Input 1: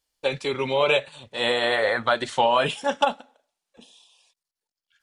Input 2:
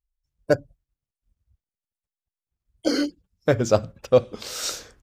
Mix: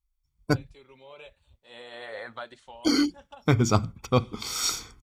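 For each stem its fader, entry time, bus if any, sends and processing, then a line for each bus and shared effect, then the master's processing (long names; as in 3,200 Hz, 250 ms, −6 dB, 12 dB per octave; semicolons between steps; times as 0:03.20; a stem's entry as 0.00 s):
−15.0 dB, 0.30 s, no send, automatic ducking −12 dB, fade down 0.40 s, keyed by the second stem
−1.0 dB, 0.00 s, no send, comb filter 0.9 ms, depth 85%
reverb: not used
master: no processing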